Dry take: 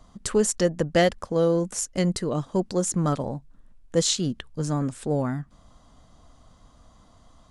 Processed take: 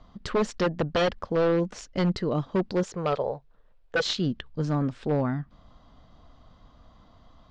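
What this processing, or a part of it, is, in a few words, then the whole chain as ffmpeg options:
synthesiser wavefolder: -filter_complex "[0:a]asettb=1/sr,asplit=3[s0][s1][s2];[s0]atrim=end=2.834[s3];[s1]atrim=start=2.83:end=4.06,asetpts=PTS-STARTPTS,afade=t=in:d=0.004:c=qsin,afade=t=out:st=1.226:d=0.004:c=qsin,lowshelf=f=350:t=q:w=3:g=-8[s4];[s2]atrim=start=4.056[s5];[s3][s4]acrossfade=d=0.004:c1=hsin:c2=qsin[s6];[s6][s5]acrossfade=d=0.004:c1=qsin:c2=hsin,aeval=exprs='0.141*(abs(mod(val(0)/0.141+3,4)-2)-1)':c=same,lowpass=f=4500:w=0.5412,lowpass=f=4500:w=1.3066"

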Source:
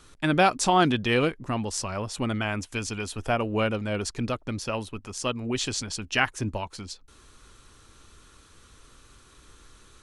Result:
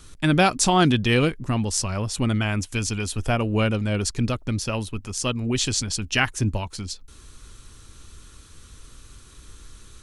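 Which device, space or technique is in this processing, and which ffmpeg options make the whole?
smiley-face EQ: -af "lowshelf=f=190:g=7,equalizer=f=780:t=o:w=2.6:g=-4,highshelf=f=5000:g=5,volume=1.5"

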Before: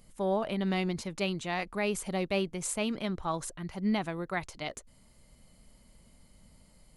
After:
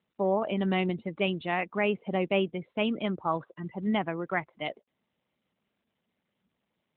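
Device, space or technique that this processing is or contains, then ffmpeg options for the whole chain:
mobile call with aggressive noise cancelling: -af "highpass=170,afftdn=nr=27:nf=-43,volume=1.68" -ar 8000 -c:a libopencore_amrnb -b:a 12200

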